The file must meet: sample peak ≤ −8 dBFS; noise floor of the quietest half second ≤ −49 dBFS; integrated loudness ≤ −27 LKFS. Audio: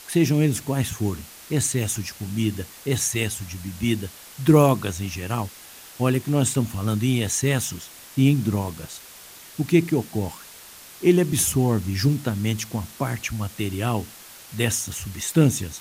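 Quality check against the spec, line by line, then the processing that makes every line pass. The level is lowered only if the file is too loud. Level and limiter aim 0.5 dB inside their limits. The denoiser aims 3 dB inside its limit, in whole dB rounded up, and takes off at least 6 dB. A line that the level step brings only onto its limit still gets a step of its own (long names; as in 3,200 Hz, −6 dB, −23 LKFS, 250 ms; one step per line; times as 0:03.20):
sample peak −5.0 dBFS: out of spec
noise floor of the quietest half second −44 dBFS: out of spec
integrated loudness −23.5 LKFS: out of spec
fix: broadband denoise 6 dB, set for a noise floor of −44 dBFS
level −4 dB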